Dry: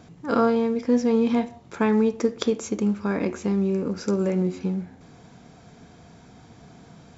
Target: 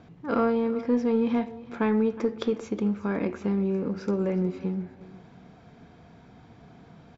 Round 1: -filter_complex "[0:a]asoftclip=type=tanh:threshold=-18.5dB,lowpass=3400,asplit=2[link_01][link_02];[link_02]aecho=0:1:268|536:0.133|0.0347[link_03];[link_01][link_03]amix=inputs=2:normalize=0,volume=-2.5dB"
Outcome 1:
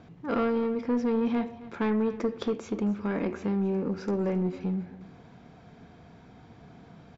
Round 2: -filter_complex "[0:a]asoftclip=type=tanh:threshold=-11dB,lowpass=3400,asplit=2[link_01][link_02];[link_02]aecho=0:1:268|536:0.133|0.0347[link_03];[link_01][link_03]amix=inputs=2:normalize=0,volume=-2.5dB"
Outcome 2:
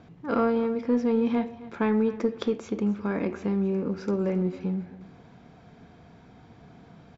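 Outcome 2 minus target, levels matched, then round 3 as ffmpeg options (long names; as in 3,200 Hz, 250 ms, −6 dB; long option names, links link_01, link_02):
echo 96 ms early
-filter_complex "[0:a]asoftclip=type=tanh:threshold=-11dB,lowpass=3400,asplit=2[link_01][link_02];[link_02]aecho=0:1:364|728:0.133|0.0347[link_03];[link_01][link_03]amix=inputs=2:normalize=0,volume=-2.5dB"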